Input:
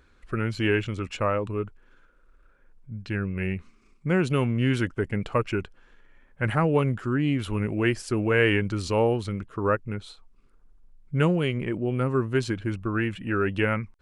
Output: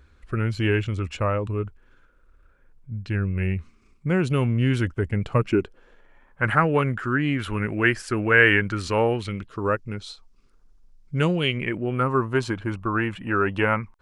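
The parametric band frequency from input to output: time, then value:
parametric band +10.5 dB 1.1 octaves
0:05.20 74 Hz
0:05.59 340 Hz
0:06.63 1,600 Hz
0:09.07 1,600 Hz
0:09.62 5,400 Hz
0:11.16 5,400 Hz
0:12.13 970 Hz

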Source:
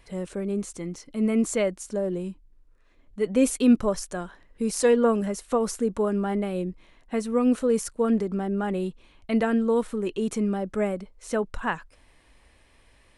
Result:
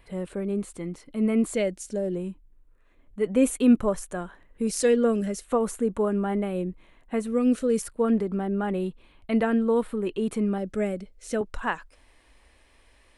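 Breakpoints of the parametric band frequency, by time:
parametric band −12.5 dB 0.66 octaves
6,000 Hz
from 0:01.54 1,100 Hz
from 0:02.15 5,100 Hz
from 0:04.67 950 Hz
from 0:05.44 5,200 Hz
from 0:07.27 920 Hz
from 0:07.82 6,100 Hz
from 0:10.58 1,000 Hz
from 0:11.41 140 Hz

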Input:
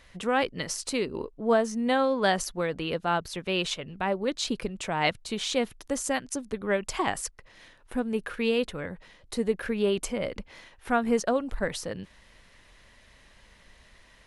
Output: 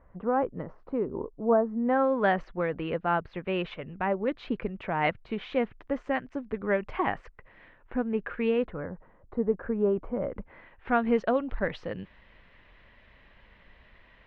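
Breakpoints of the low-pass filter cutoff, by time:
low-pass filter 24 dB per octave
0:01.74 1,200 Hz
0:02.17 2,300 Hz
0:08.52 2,300 Hz
0:08.92 1,300 Hz
0:10.20 1,300 Hz
0:10.97 3,000 Hz

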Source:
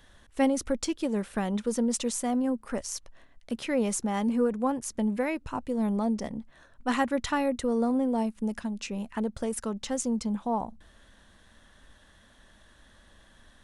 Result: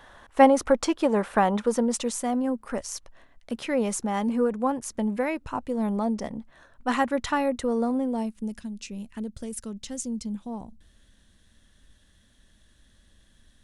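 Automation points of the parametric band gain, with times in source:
parametric band 930 Hz 2.3 octaves
0:01.47 +14.5 dB
0:02.11 +3.5 dB
0:07.70 +3.5 dB
0:08.31 −4 dB
0:08.61 −13 dB

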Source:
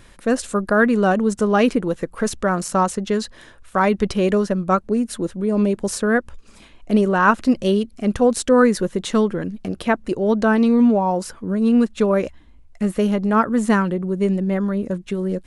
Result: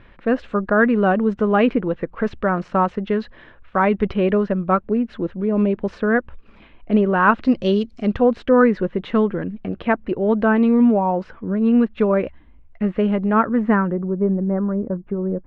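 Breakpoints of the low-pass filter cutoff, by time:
low-pass filter 24 dB per octave
0:07.19 2,900 Hz
0:07.93 6,200 Hz
0:08.26 2,800 Hz
0:13.42 2,800 Hz
0:14.18 1,300 Hz

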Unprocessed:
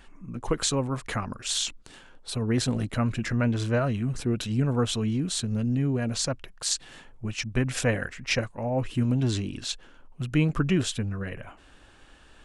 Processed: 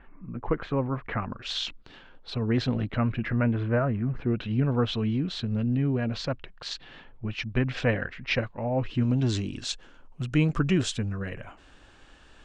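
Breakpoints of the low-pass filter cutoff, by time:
low-pass filter 24 dB per octave
0:01.04 2,200 Hz
0:01.49 4,300 Hz
0:02.54 4,300 Hz
0:03.99 1,900 Hz
0:04.70 4,000 Hz
0:08.75 4,000 Hz
0:09.41 8,000 Hz

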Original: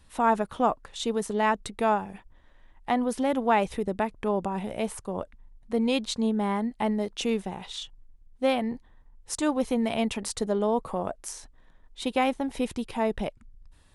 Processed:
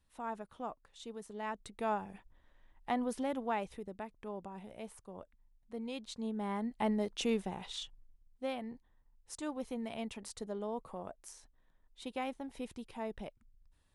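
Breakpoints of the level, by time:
0:01.30 −18 dB
0:02.05 −8.5 dB
0:03.10 −8.5 dB
0:03.92 −16.5 dB
0:05.96 −16.5 dB
0:06.88 −5.5 dB
0:07.82 −5.5 dB
0:08.48 −14 dB

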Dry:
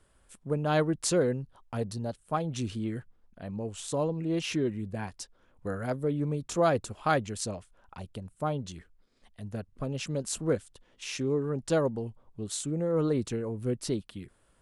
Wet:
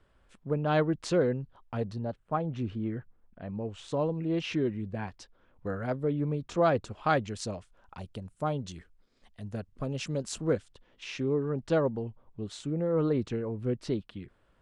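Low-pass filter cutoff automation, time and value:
0:01.81 3,700 Hz
0:02.23 1,900 Hz
0:02.99 1,900 Hz
0:03.93 3,700 Hz
0:06.61 3,700 Hz
0:08.04 8,000 Hz
0:09.96 8,000 Hz
0:11.20 3,500 Hz

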